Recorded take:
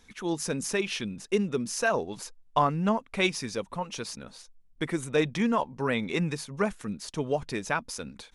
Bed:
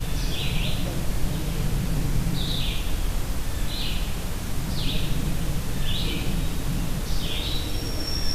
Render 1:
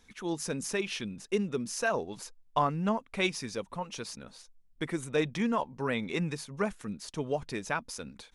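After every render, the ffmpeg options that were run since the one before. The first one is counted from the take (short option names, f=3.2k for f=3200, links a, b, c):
-af "volume=-3.5dB"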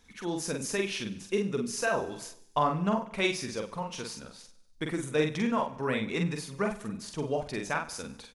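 -filter_complex "[0:a]asplit=2[a][b];[b]adelay=46,volume=-4dB[c];[a][c]amix=inputs=2:normalize=0,aecho=1:1:97|194|291|388:0.133|0.0693|0.0361|0.0188"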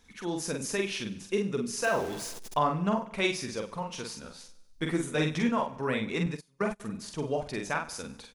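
-filter_complex "[0:a]asettb=1/sr,asplit=3[a][b][c];[a]atrim=end=1.844[d];[b]atrim=start=1.84:end=2.57,asetpts=PTS-STARTPTS,afade=t=in:d=0.004:c=qsin,afade=t=out:st=0.726:d=0.004:c=qsin,aeval=exprs='val(0)+0.5*0.0133*sgn(val(0))':c=same[e];[c]atrim=start=2.566[f];[d][e]acrossfade=d=0.004:c1=hsin:c2=qsin[g];[g][f]acrossfade=d=0.004:c1=qsin:c2=hsin,asettb=1/sr,asplit=3[h][i][j];[h]atrim=end=4.224[k];[i]atrim=start=4.22:end=5.49,asetpts=PTS-STARTPTS,afade=t=in:d=0.004:c=qsin,afade=t=out:st=1.266:d=0.004:c=qsin,asplit=2[l][m];[m]adelay=12,volume=-2.5dB[n];[l][n]amix=inputs=2:normalize=0,atrim=end_sample=56007[o];[j]atrim=start=5.486[p];[k][o]acrossfade=d=0.004:c1=hsin:c2=qsin[q];[q][p]acrossfade=d=0.004:c1=qsin:c2=hsin,asettb=1/sr,asplit=3[r][s][t];[r]atrim=end=6.264[u];[s]atrim=start=6.26:end=6.8,asetpts=PTS-STARTPTS,afade=t=in:d=0.004:c=qsin,afade=t=out:st=0.536:d=0.004:c=qsin,agate=range=-26dB:threshold=-35dB:ratio=16:release=100:detection=peak[v];[t]atrim=start=6.796[w];[u][v]acrossfade=d=0.004:c1=hsin:c2=qsin[x];[x][w]acrossfade=d=0.004:c1=qsin:c2=hsin"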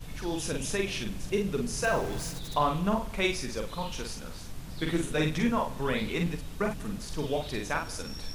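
-filter_complex "[1:a]volume=-14dB[a];[0:a][a]amix=inputs=2:normalize=0"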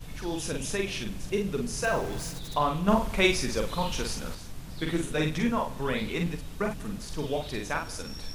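-filter_complex "[0:a]asettb=1/sr,asplit=3[a][b][c];[a]atrim=end=2.884[d];[b]atrim=start=2.88:end=4.35,asetpts=PTS-STARTPTS,afade=t=in:d=0.004:c=qsin,afade=t=out:st=1.466:d=0.004:c=qsin,acontrast=31[e];[c]atrim=start=4.346[f];[d][e]acrossfade=d=0.004:c1=hsin:c2=qsin[g];[g][f]acrossfade=d=0.004:c1=qsin:c2=hsin"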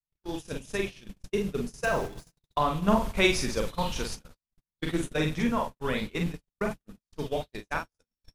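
-af "agate=range=-60dB:threshold=-30dB:ratio=16:detection=peak"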